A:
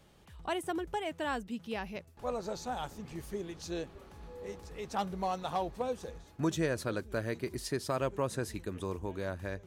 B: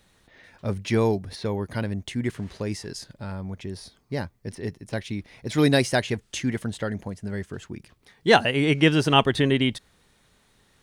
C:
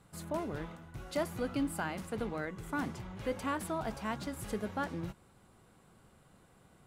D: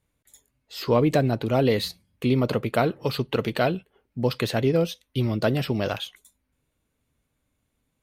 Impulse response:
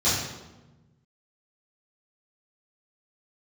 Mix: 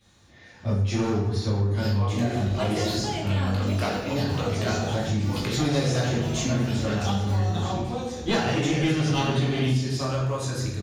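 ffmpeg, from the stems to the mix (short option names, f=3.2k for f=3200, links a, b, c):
-filter_complex "[0:a]equalizer=f=5.3k:t=o:w=2.3:g=8.5,acompressor=mode=upward:threshold=-34dB:ratio=2.5,adelay=2100,volume=-3dB,asplit=2[a][b];[b]volume=-10.5dB[c];[1:a]equalizer=f=6.8k:t=o:w=0.77:g=3,aeval=exprs='clip(val(0),-1,0.0794)':c=same,volume=-9dB,asplit=3[d][e][f];[e]volume=-4dB[g];[2:a]lowpass=1k,acrusher=samples=13:mix=1:aa=0.000001,adelay=2500,volume=-10dB,asplit=2[h][i];[i]volume=-4.5dB[j];[3:a]highpass=620,flanger=delay=17:depth=2.4:speed=0.58,adelay=1050,volume=2dB,asplit=2[k][l];[l]volume=-17dB[m];[f]apad=whole_len=400240[n];[k][n]sidechaincompress=threshold=-37dB:ratio=8:attack=16:release=1500[o];[4:a]atrim=start_sample=2205[p];[c][g][j][m]amix=inputs=4:normalize=0[q];[q][p]afir=irnorm=-1:irlink=0[r];[a][d][h][o][r]amix=inputs=5:normalize=0,acompressor=threshold=-21dB:ratio=4"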